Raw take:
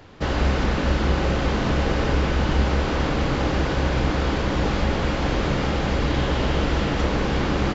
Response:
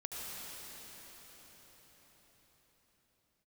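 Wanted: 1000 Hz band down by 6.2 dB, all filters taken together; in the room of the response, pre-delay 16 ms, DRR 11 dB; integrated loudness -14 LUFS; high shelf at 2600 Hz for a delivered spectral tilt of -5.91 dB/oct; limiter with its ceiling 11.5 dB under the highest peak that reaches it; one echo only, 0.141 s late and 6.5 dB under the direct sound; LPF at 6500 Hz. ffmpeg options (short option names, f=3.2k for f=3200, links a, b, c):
-filter_complex "[0:a]lowpass=6.5k,equalizer=f=1k:t=o:g=-7.5,highshelf=f=2.6k:g=-5,alimiter=limit=-20dB:level=0:latency=1,aecho=1:1:141:0.473,asplit=2[a][b];[1:a]atrim=start_sample=2205,adelay=16[c];[b][c]afir=irnorm=-1:irlink=0,volume=-12.5dB[d];[a][d]amix=inputs=2:normalize=0,volume=14dB"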